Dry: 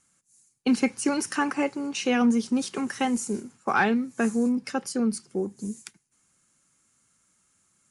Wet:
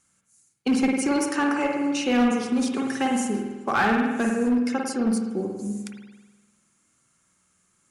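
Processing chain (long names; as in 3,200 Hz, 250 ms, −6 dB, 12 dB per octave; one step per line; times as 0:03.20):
spring reverb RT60 1.2 s, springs 49 ms, chirp 70 ms, DRR 0.5 dB
asymmetric clip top −17 dBFS, bottom −14 dBFS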